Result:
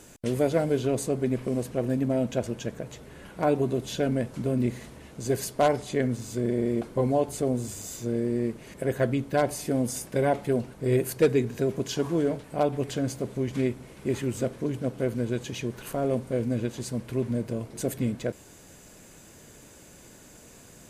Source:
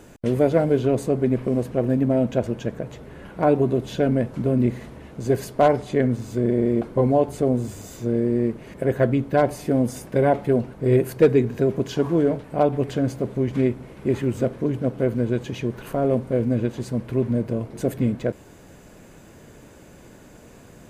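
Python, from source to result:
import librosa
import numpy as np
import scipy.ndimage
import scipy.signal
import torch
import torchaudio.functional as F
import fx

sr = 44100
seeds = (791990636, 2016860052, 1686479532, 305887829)

y = fx.peak_eq(x, sr, hz=8600.0, db=12.0, octaves=2.6)
y = F.gain(torch.from_numpy(y), -6.0).numpy()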